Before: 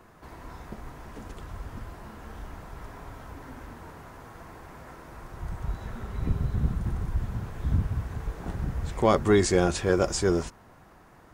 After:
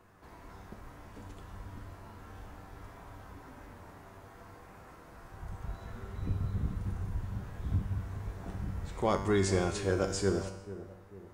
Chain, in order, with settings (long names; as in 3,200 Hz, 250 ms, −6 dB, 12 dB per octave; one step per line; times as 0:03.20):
tuned comb filter 97 Hz, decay 0.9 s, harmonics all, mix 80%
on a send: feedback echo with a low-pass in the loop 445 ms, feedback 48%, low-pass 850 Hz, level −13.5 dB
on the sum: level +4 dB